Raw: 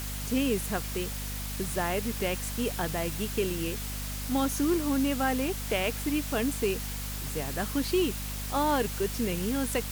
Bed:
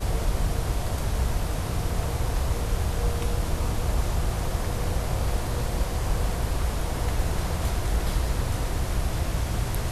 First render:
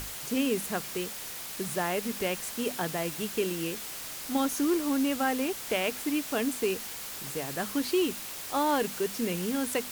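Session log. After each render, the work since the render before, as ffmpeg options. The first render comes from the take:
ffmpeg -i in.wav -af "bandreject=frequency=50:width_type=h:width=6,bandreject=frequency=100:width_type=h:width=6,bandreject=frequency=150:width_type=h:width=6,bandreject=frequency=200:width_type=h:width=6,bandreject=frequency=250:width_type=h:width=6" out.wav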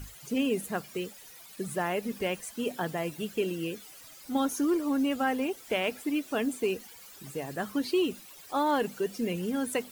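ffmpeg -i in.wav -af "afftdn=noise_reduction=15:noise_floor=-40" out.wav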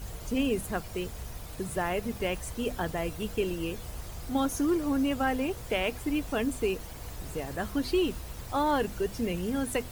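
ffmpeg -i in.wav -i bed.wav -filter_complex "[1:a]volume=-15.5dB[link_01];[0:a][link_01]amix=inputs=2:normalize=0" out.wav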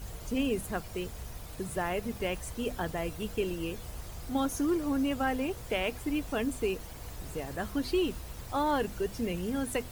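ffmpeg -i in.wav -af "volume=-2dB" out.wav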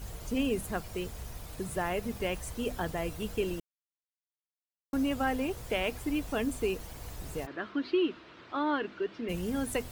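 ffmpeg -i in.wav -filter_complex "[0:a]asplit=3[link_01][link_02][link_03];[link_01]afade=type=out:start_time=7.45:duration=0.02[link_04];[link_02]highpass=300,equalizer=frequency=320:width_type=q:width=4:gain=7,equalizer=frequency=510:width_type=q:width=4:gain=-6,equalizer=frequency=790:width_type=q:width=4:gain=-8,equalizer=frequency=1400:width_type=q:width=4:gain=4,lowpass=frequency=3700:width=0.5412,lowpass=frequency=3700:width=1.3066,afade=type=in:start_time=7.45:duration=0.02,afade=type=out:start_time=9.28:duration=0.02[link_05];[link_03]afade=type=in:start_time=9.28:duration=0.02[link_06];[link_04][link_05][link_06]amix=inputs=3:normalize=0,asplit=3[link_07][link_08][link_09];[link_07]atrim=end=3.6,asetpts=PTS-STARTPTS,afade=type=out:start_time=3.596:duration=0.004:curve=hsin[link_10];[link_08]atrim=start=3.6:end=4.93,asetpts=PTS-STARTPTS,volume=0[link_11];[link_09]atrim=start=4.93,asetpts=PTS-STARTPTS,afade=type=in:duration=0.004:curve=hsin[link_12];[link_10][link_11][link_12]concat=n=3:v=0:a=1" out.wav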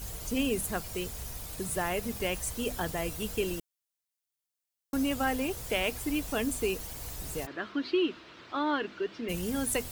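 ffmpeg -i in.wav -af "highshelf=frequency=3800:gain=9.5" out.wav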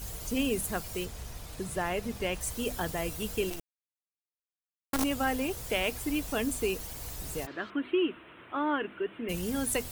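ffmpeg -i in.wav -filter_complex "[0:a]asettb=1/sr,asplit=3[link_01][link_02][link_03];[link_01]atrim=end=1.054[link_04];[link_02]atrim=start=1.05:end=2.41,asetpts=PTS-STARTPTS,afade=type=in:duration=0.004:curve=qsin,afade=type=out:start_time=1.356:duration=0.004:curve=qsin,highshelf=frequency=8000:gain=-11[link_05];[link_03]atrim=start=2.406[link_06];[link_04][link_05]acrossfade=duration=0.004:curve1=hsin:curve2=qsin[link_07];[link_07][link_06]acrossfade=duration=0.004:curve1=qsin:curve2=hsin,asettb=1/sr,asplit=3[link_08][link_09][link_10];[link_08]atrim=end=3.504[link_11];[link_09]atrim=start=3.5:end=5.04,asetpts=PTS-STARTPTS,afade=type=in:duration=0.004:curve=qsin,afade=type=out:start_time=1.536:duration=0.004:curve=qsin,acrusher=bits=5:dc=4:mix=0:aa=0.000001[link_12];[link_10]atrim=start=5.036[link_13];[link_11][link_12]acrossfade=duration=0.004:curve1=hsin:curve2=qsin[link_14];[link_14][link_13]acrossfade=duration=0.004:curve1=qsin:curve2=hsin,asettb=1/sr,asplit=3[link_15][link_16][link_17];[link_15]atrim=end=7.704[link_18];[link_16]atrim=start=7.7:end=9.29,asetpts=PTS-STARTPTS,afade=type=in:duration=0.004:curve=qsin,afade=type=out:start_time=1.586:duration=0.004:curve=qsin,asuperstop=centerf=5500:order=8:qfactor=0.93[link_19];[link_17]atrim=start=9.286[link_20];[link_18][link_19]acrossfade=duration=0.004:curve1=hsin:curve2=qsin[link_21];[link_21][link_20]acrossfade=duration=0.004:curve1=qsin:curve2=hsin" out.wav

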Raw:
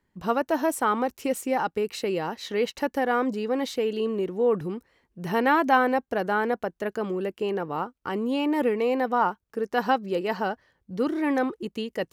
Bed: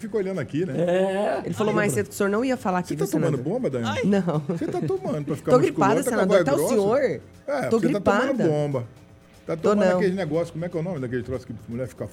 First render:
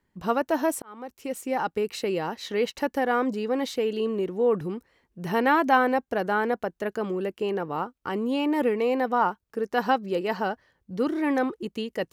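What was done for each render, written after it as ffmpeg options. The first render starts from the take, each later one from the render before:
ffmpeg -i in.wav -filter_complex "[0:a]asplit=2[link_01][link_02];[link_01]atrim=end=0.82,asetpts=PTS-STARTPTS,afade=type=out:start_time=0.816:duration=0.004:curve=hsin[link_03];[link_02]atrim=start=0.82,asetpts=PTS-STARTPTS,afade=type=in:duration=0.9[link_04];[link_03][link_04]concat=n=2:v=0:a=1" out.wav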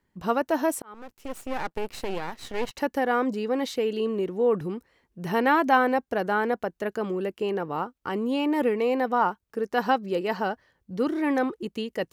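ffmpeg -i in.wav -filter_complex "[0:a]asettb=1/sr,asplit=3[link_01][link_02][link_03];[link_01]atrim=end=0.944[link_04];[link_02]atrim=start=0.94:end=2.71,asetpts=PTS-STARTPTS,afade=type=in:duration=0.004:curve=qsin,afade=type=out:start_time=1.766:duration=0.004:curve=qsin,aeval=exprs='max(val(0),0)':channel_layout=same[link_05];[link_03]atrim=start=2.706[link_06];[link_04][link_05]acrossfade=duration=0.004:curve1=hsin:curve2=qsin[link_07];[link_07][link_06]acrossfade=duration=0.004:curve1=qsin:curve2=hsin" out.wav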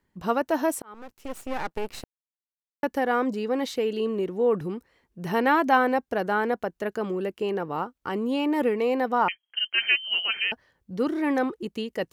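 ffmpeg -i in.wav -filter_complex "[0:a]asettb=1/sr,asplit=3[link_01][link_02][link_03];[link_01]atrim=end=9.284[link_04];[link_02]atrim=start=9.28:end=10.52,asetpts=PTS-STARTPTS,afade=type=in:duration=0.004:curve=qsin,afade=type=out:start_time=1.236:duration=0.004:curve=qsin,lowpass=frequency=2800:width_type=q:width=0.5098,lowpass=frequency=2800:width_type=q:width=0.6013,lowpass=frequency=2800:width_type=q:width=0.9,lowpass=frequency=2800:width_type=q:width=2.563,afreqshift=-3300[link_05];[link_03]atrim=start=10.516[link_06];[link_04][link_05]acrossfade=duration=0.004:curve1=hsin:curve2=qsin[link_07];[link_07][link_06]acrossfade=duration=0.004:curve1=qsin:curve2=hsin,asplit=3[link_08][link_09][link_10];[link_08]atrim=end=2.04,asetpts=PTS-STARTPTS,afade=type=out:start_time=2.036:duration=0.004:curve=hsin[link_11];[link_09]atrim=start=2.04:end=2.83,asetpts=PTS-STARTPTS,volume=0[link_12];[link_10]atrim=start=2.83,asetpts=PTS-STARTPTS,afade=type=in:duration=0.004:curve=hsin[link_13];[link_11][link_12][link_13]concat=n=3:v=0:a=1" out.wav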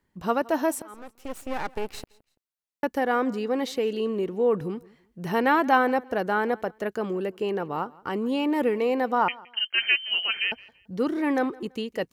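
ffmpeg -i in.wav -af "aecho=1:1:168|336:0.0708|0.0198" out.wav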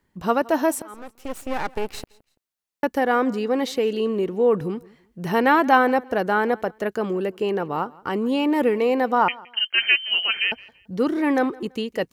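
ffmpeg -i in.wav -af "volume=4dB" out.wav

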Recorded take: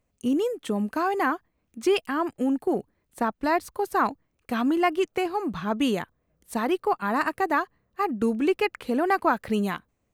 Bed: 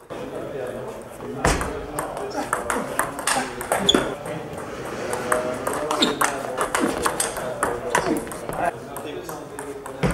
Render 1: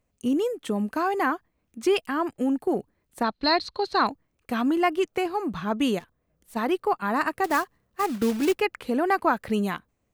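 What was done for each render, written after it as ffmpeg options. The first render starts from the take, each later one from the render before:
ffmpeg -i in.wav -filter_complex "[0:a]asplit=3[link_01][link_02][link_03];[link_01]afade=type=out:start_time=3.23:duration=0.02[link_04];[link_02]lowpass=frequency=4200:width_type=q:width=12,afade=type=in:start_time=3.23:duration=0.02,afade=type=out:start_time=4.05:duration=0.02[link_05];[link_03]afade=type=in:start_time=4.05:duration=0.02[link_06];[link_04][link_05][link_06]amix=inputs=3:normalize=0,asplit=3[link_07][link_08][link_09];[link_07]afade=type=out:start_time=5.98:duration=0.02[link_10];[link_08]aeval=exprs='(tanh(200*val(0)+0.35)-tanh(0.35))/200':channel_layout=same,afade=type=in:start_time=5.98:duration=0.02,afade=type=out:start_time=6.55:duration=0.02[link_11];[link_09]afade=type=in:start_time=6.55:duration=0.02[link_12];[link_10][link_11][link_12]amix=inputs=3:normalize=0,asettb=1/sr,asplit=3[link_13][link_14][link_15];[link_13]atrim=end=7.444[link_16];[link_14]atrim=start=7.44:end=8.61,asetpts=PTS-STARTPTS,afade=type=in:duration=0.004:curve=qsin,afade=type=out:start_time=1.166:duration=0.004:curve=qsin,acrusher=bits=3:mode=log:mix=0:aa=0.000001[link_17];[link_15]atrim=start=8.606[link_18];[link_16][link_17]acrossfade=duration=0.004:curve1=hsin:curve2=qsin[link_19];[link_19][link_18]acrossfade=duration=0.004:curve1=qsin:curve2=hsin" out.wav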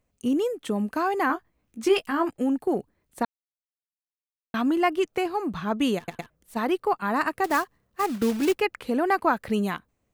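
ffmpeg -i in.wav -filter_complex "[0:a]asettb=1/sr,asplit=3[link_01][link_02][link_03];[link_01]atrim=end=1.284[link_04];[link_02]atrim=start=1.28:end=2.3,asetpts=PTS-STARTPTS,afade=type=in:duration=0.004:curve=qsin,afade=type=out:start_time=1.016:duration=0.004:curve=qsin,asplit=2[link_05][link_06];[link_06]adelay=18,volume=-6dB[link_07];[link_05][link_07]amix=inputs=2:normalize=0,atrim=end_sample=44982[link_08];[link_03]atrim=start=2.296[link_09];[link_04][link_08]acrossfade=duration=0.004:curve1=hsin:curve2=qsin[link_10];[link_10][link_09]acrossfade=duration=0.004:curve1=qsin:curve2=hsin,asplit=6[link_11][link_12][link_13][link_14][link_15][link_16];[link_11]atrim=end=3.25,asetpts=PTS-STARTPTS,afade=type=out:start_time=3.246:duration=0.004:curve=hsin[link_17];[link_12]atrim=start=3.25:end=4.54,asetpts=PTS-STARTPTS,volume=0[link_18];[link_13]atrim=start=4.54:end=6.082,asetpts=PTS-STARTPTS,afade=type=in:duration=0.004:curve=hsin[link_19];[link_14]atrim=start=5.968:end=6.082[link_20];[link_15]atrim=start=5.968:end=6.082[link_21];[link_16]atrim=start=6.298[link_22];[link_17][link_18][link_19]concat=n=3:v=0:a=1[link_23];[link_23][link_20]acrossfade=duration=0.004:curve1=hsin:curve2=hsin[link_24];[link_24][link_21]acrossfade=duration=0.004:curve1=hsin:curve2=hsin[link_25];[link_25][link_22]acrossfade=duration=0.004:curve1=hsin:curve2=hsin" out.wav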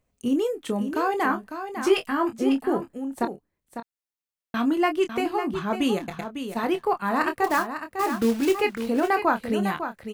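ffmpeg -i in.wav -filter_complex "[0:a]asplit=2[link_01][link_02];[link_02]adelay=26,volume=-8.5dB[link_03];[link_01][link_03]amix=inputs=2:normalize=0,aecho=1:1:551:0.355" out.wav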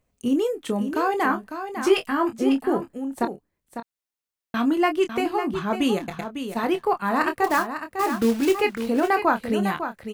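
ffmpeg -i in.wav -af "volume=1.5dB" out.wav

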